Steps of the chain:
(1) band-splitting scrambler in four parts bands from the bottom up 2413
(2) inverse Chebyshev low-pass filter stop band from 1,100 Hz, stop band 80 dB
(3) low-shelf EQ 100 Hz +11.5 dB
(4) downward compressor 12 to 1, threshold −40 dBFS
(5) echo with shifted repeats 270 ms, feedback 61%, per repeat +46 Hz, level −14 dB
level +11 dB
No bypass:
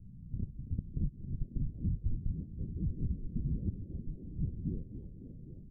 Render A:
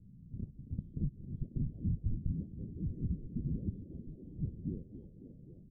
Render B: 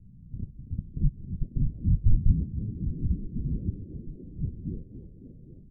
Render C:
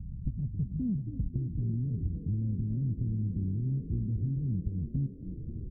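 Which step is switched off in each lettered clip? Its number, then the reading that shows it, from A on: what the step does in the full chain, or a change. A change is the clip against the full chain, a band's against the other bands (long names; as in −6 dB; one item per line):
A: 3, change in crest factor +2.5 dB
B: 4, average gain reduction 3.5 dB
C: 1, change in crest factor −3.0 dB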